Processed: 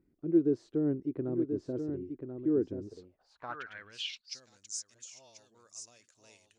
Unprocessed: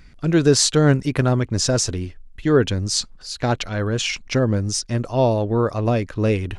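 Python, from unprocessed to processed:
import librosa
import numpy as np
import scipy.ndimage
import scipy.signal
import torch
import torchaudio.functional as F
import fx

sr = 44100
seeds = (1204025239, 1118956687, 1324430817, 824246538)

p1 = fx.dispersion(x, sr, late='highs', ms=65.0, hz=1200.0, at=(4.94, 5.55))
p2 = p1 + fx.echo_single(p1, sr, ms=1035, db=-7.0, dry=0)
p3 = fx.filter_sweep_bandpass(p2, sr, from_hz=340.0, to_hz=7000.0, start_s=2.81, end_s=4.48, q=4.7)
p4 = fx.low_shelf(p3, sr, hz=230.0, db=7.5)
y = p4 * librosa.db_to_amplitude(-8.0)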